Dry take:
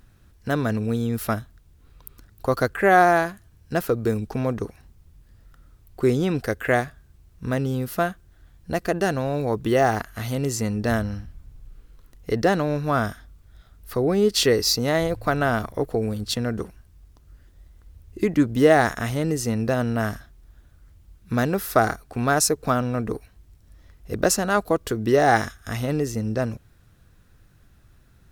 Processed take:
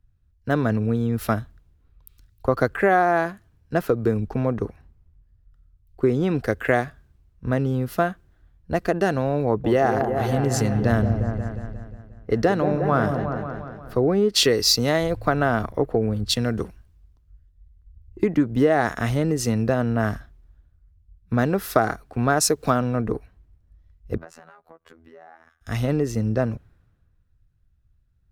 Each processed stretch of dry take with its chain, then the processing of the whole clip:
9.46–13.96 s: delay with an opening low-pass 178 ms, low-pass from 750 Hz, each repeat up 1 oct, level -6 dB + tape noise reduction on one side only decoder only
24.17–25.61 s: three-band isolator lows -12 dB, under 590 Hz, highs -13 dB, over 2.4 kHz + compression 16:1, threshold -35 dBFS + robot voice 82 Hz
whole clip: treble shelf 4.1 kHz -10.5 dB; compression 6:1, threshold -21 dBFS; three bands expanded up and down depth 70%; trim +4.5 dB

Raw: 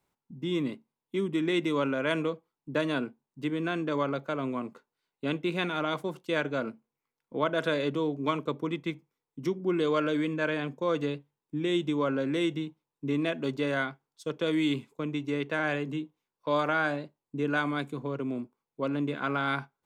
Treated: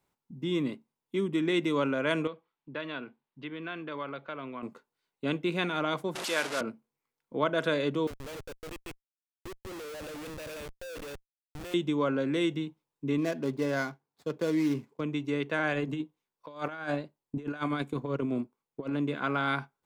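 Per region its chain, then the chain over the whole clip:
2.27–4.63 s: low-pass 3.7 kHz 24 dB/octave + tilt shelf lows -5 dB, about 760 Hz + compression 1.5:1, threshold -46 dBFS
6.15–6.61 s: one-bit delta coder 64 kbps, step -27.5 dBFS + frequency weighting A
8.07–11.74 s: two resonant band-passes 1.2 kHz, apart 2.3 oct + Schmitt trigger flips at -47.5 dBFS
13.18–15.01 s: median filter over 15 samples + high-pass 47 Hz + band-stop 1.3 kHz, Q 13
15.73–18.93 s: transient shaper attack +5 dB, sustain -6 dB + compressor with a negative ratio -32 dBFS, ratio -0.5
whole clip: none

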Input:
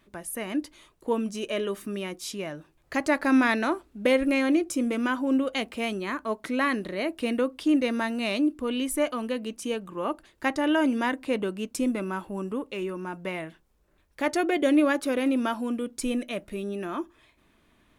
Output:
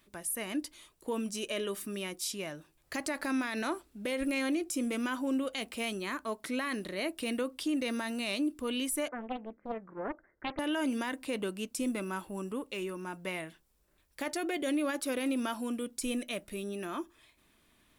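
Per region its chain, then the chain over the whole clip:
9.08–10.59 s: rippled Chebyshev low-pass 2.1 kHz, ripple 6 dB + loudspeaker Doppler distortion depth 0.8 ms
whole clip: treble shelf 3.5 kHz +12 dB; band-stop 6.5 kHz, Q 23; peak limiter -18.5 dBFS; trim -6 dB

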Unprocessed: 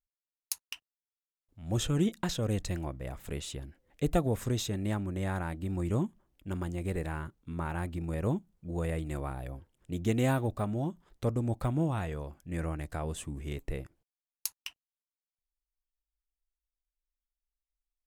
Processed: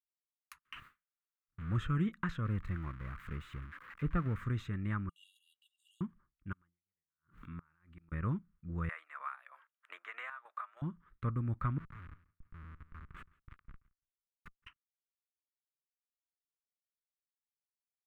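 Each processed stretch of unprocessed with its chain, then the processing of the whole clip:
0.65–1.79 s: jump at every zero crossing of -38.5 dBFS + gate with hold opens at -39 dBFS, closes at -44 dBFS + band-stop 5.3 kHz, Q 17
2.45–4.44 s: zero-crossing glitches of -23 dBFS + low-pass 1.4 kHz 6 dB/octave
5.09–6.01 s: brick-wall FIR high-pass 2.7 kHz + treble shelf 7 kHz +5.5 dB + comb 2.1 ms, depth 95%
6.52–8.12 s: tilt EQ +1.5 dB/octave + inverted gate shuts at -30 dBFS, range -35 dB + swell ahead of each attack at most 92 dB/s
8.89–10.82 s: steep high-pass 650 Hz + square tremolo 3.2 Hz, depth 60% + three bands compressed up and down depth 100%
11.78–14.67 s: amplifier tone stack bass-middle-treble 10-0-10 + Schmitt trigger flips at -41 dBFS + feedback delay 168 ms, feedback 47%, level -17 dB
whole clip: expander -54 dBFS; FFT filter 170 Hz 0 dB, 760 Hz -18 dB, 1.2 kHz +9 dB, 2.1 kHz +1 dB, 5.2 kHz -24 dB; trim -2.5 dB

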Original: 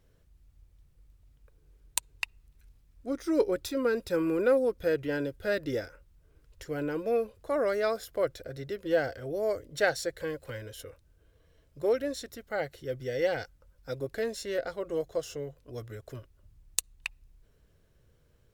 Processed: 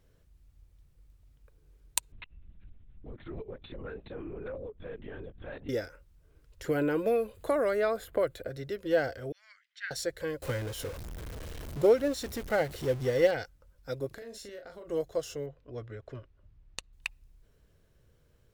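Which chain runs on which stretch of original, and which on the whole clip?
2.12–5.69 s: bass shelf 130 Hz +10.5 dB + compression 2.5:1, threshold -46 dBFS + LPC vocoder at 8 kHz whisper
6.64–8.49 s: peaking EQ 5.5 kHz -12 dB 0.38 oct + three bands compressed up and down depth 100%
9.32–9.91 s: steep high-pass 1.6 kHz + tape spacing loss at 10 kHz 35 dB + tape noise reduction on one side only encoder only
10.42–13.31 s: jump at every zero crossing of -38.5 dBFS + bass shelf 470 Hz +4 dB + transient shaper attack +4 dB, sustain -3 dB
14.07–14.88 s: compression 8:1, threshold -43 dBFS + doubling 39 ms -6 dB + tape noise reduction on one side only encoder only
15.46–16.93 s: low-pass 5.6 kHz + tone controls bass -1 dB, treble -10 dB
whole clip: none

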